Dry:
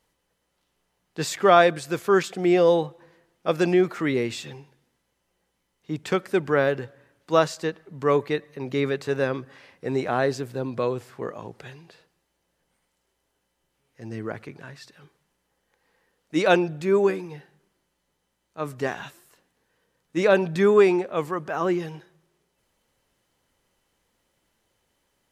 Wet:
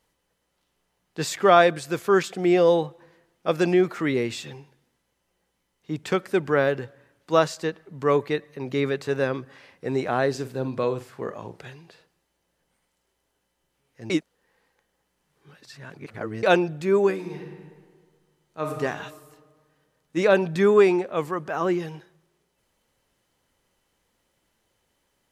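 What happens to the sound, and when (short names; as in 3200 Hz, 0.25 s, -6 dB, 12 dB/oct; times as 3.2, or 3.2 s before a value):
10.3–11.7 flutter echo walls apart 7.8 m, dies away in 0.23 s
14.1–16.43 reverse
17.14–18.73 reverb throw, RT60 1.7 s, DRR 1 dB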